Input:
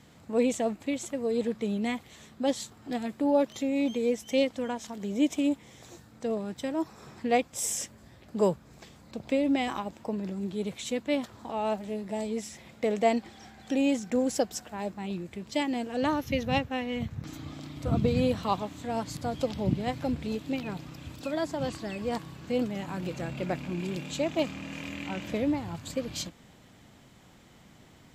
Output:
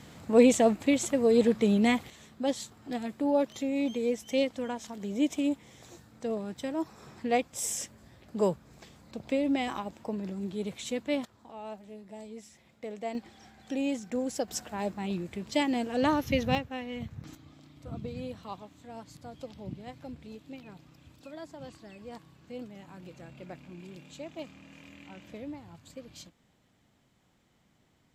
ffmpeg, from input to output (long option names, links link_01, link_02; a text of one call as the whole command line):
ffmpeg -i in.wav -af "asetnsamples=nb_out_samples=441:pad=0,asendcmd='2.1 volume volume -2dB;11.25 volume volume -12dB;13.15 volume volume -5dB;14.48 volume volume 1.5dB;16.55 volume volume -5.5dB;17.35 volume volume -13dB',volume=6dB" out.wav